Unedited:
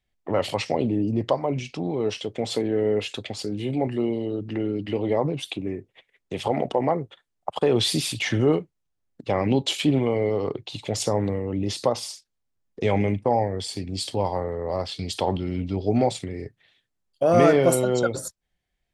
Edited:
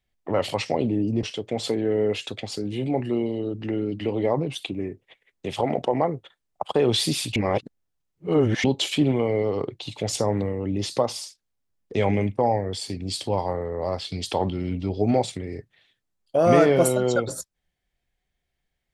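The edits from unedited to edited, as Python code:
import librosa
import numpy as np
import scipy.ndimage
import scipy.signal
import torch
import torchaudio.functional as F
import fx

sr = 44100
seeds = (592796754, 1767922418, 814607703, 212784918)

y = fx.edit(x, sr, fx.cut(start_s=1.23, length_s=0.87),
    fx.reverse_span(start_s=8.23, length_s=1.28), tone=tone)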